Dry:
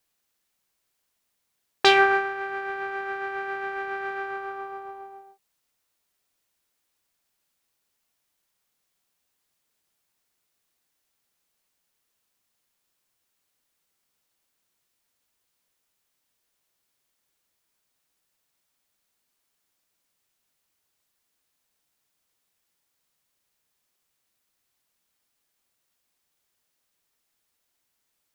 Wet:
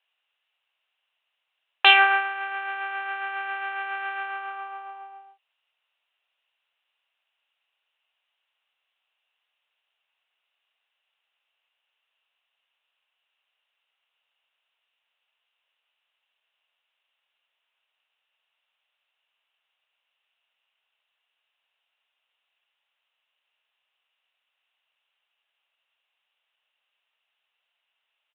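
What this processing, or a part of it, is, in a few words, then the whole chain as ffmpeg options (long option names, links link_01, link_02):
musical greeting card: -af "aresample=8000,aresample=44100,highpass=frequency=600:width=0.5412,highpass=frequency=600:width=1.3066,equalizer=frequency=2800:width_type=o:width=0.34:gain=11.5,volume=1dB"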